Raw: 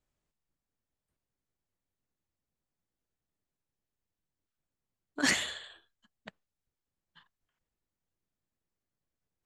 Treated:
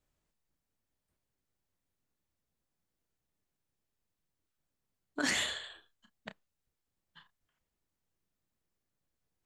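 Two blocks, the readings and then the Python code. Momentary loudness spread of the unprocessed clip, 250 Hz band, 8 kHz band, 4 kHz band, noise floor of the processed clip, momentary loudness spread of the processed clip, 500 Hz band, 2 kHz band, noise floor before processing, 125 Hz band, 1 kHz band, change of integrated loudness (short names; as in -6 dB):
18 LU, -3.5 dB, -3.0 dB, -1.0 dB, under -85 dBFS, 21 LU, -0.5 dB, -3.0 dB, under -85 dBFS, -4.0 dB, -2.0 dB, -3.5 dB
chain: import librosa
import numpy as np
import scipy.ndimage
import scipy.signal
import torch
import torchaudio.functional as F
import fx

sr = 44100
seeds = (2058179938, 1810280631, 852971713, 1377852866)

p1 = fx.over_compress(x, sr, threshold_db=-34.0, ratio=-1.0)
p2 = x + F.gain(torch.from_numpy(p1), 2.0).numpy()
p3 = fx.doubler(p2, sr, ms=31.0, db=-10.5)
y = F.gain(torch.from_numpy(p3), -7.5).numpy()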